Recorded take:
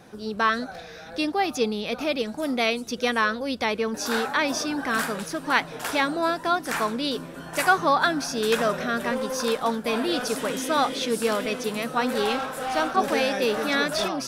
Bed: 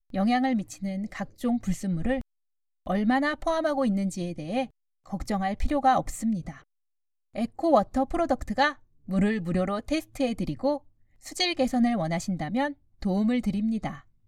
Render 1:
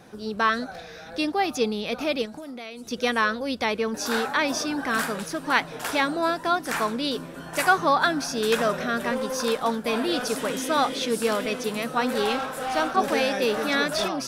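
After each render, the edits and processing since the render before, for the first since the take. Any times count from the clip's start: 2.25–2.91 compressor 12:1, threshold -34 dBFS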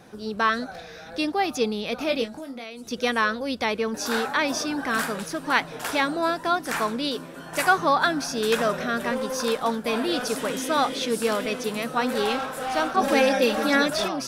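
2.06–2.64 doubler 22 ms -6.5 dB; 7.09–7.51 low shelf 120 Hz -10 dB; 13.01–13.9 comb 3.7 ms, depth 87%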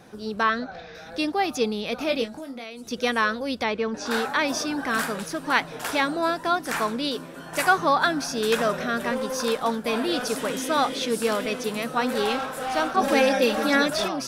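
0.43–0.95 Bessel low-pass 4000 Hz, order 4; 3.63–4.11 air absorption 99 m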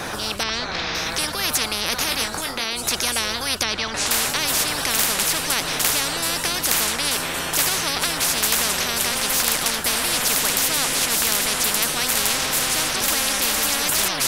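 maximiser +10 dB; spectral compressor 10:1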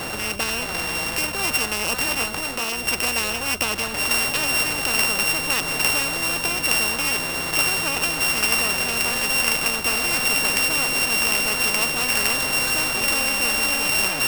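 sample sorter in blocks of 16 samples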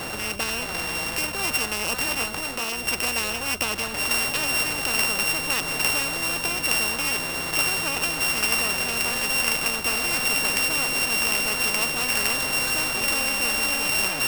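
gain -2.5 dB

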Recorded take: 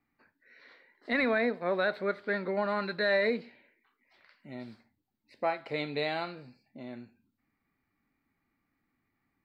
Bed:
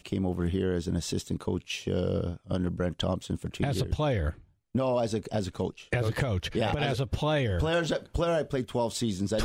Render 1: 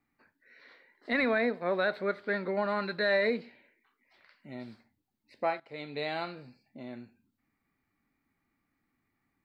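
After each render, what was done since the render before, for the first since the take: 5.6–6.25 fade in, from -16 dB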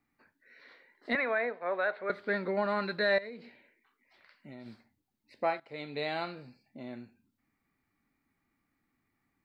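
1.15–2.1 three-band isolator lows -17 dB, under 450 Hz, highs -22 dB, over 2900 Hz; 3.18–4.66 compressor 4:1, threshold -43 dBFS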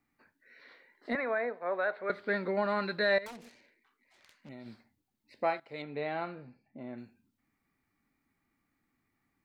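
1.09–2.03 bell 3000 Hz -10.5 dB -> -3.5 dB 1.3 oct; 3.26–4.49 self-modulated delay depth 0.8 ms; 5.82–6.98 LPF 2000 Hz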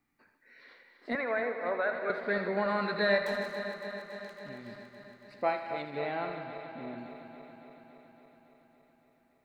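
regenerating reverse delay 0.14 s, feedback 84%, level -10.5 dB; thinning echo 80 ms, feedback 67%, level -11 dB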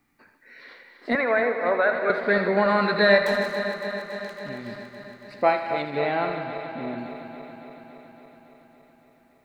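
gain +9.5 dB

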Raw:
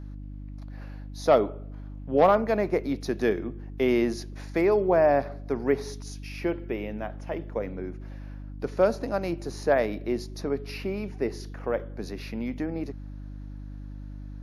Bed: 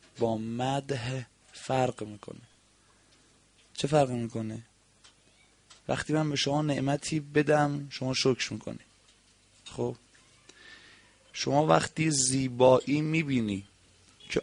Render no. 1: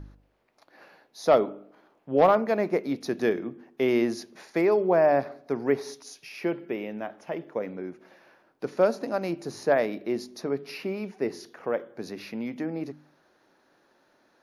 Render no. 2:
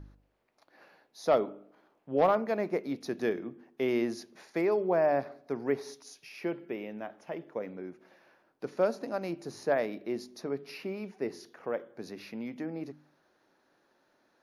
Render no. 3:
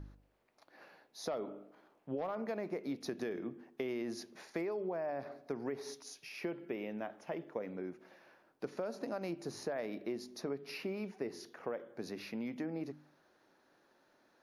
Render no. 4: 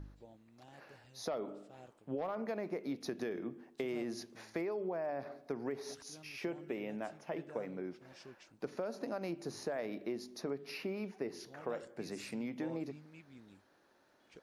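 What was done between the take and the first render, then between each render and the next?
de-hum 50 Hz, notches 6
gain -5.5 dB
limiter -23 dBFS, peak gain reduction 7.5 dB; compressor, threshold -35 dBFS, peak gain reduction 8.5 dB
add bed -29 dB

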